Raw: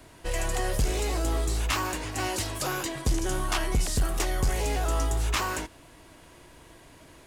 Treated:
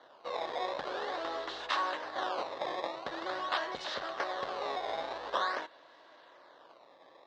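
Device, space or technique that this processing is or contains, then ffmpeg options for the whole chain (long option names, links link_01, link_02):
circuit-bent sampling toy: -af "acrusher=samples=17:mix=1:aa=0.000001:lfo=1:lforange=27.2:lforate=0.46,highpass=480,equalizer=frequency=560:width_type=q:width=4:gain=9,equalizer=frequency=800:width_type=q:width=4:gain=4,equalizer=frequency=1100:width_type=q:width=4:gain=6,equalizer=frequency=1700:width_type=q:width=4:gain=6,equalizer=frequency=2400:width_type=q:width=4:gain=-6,equalizer=frequency=3800:width_type=q:width=4:gain=7,lowpass=frequency=4800:width=0.5412,lowpass=frequency=4800:width=1.3066,volume=-6.5dB"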